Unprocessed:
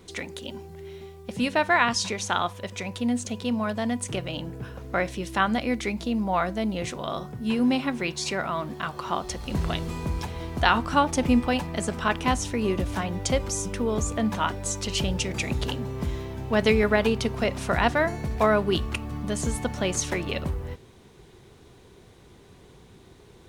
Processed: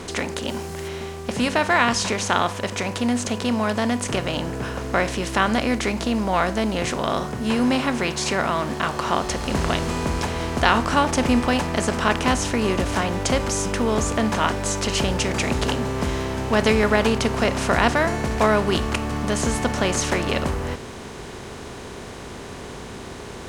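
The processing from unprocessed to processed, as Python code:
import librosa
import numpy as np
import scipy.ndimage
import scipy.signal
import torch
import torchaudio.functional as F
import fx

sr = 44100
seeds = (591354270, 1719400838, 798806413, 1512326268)

y = fx.bin_compress(x, sr, power=0.6)
y = fx.high_shelf(y, sr, hz=fx.line((0.47, 8500.0), (0.87, 5300.0)), db=8.0, at=(0.47, 0.87), fade=0.02)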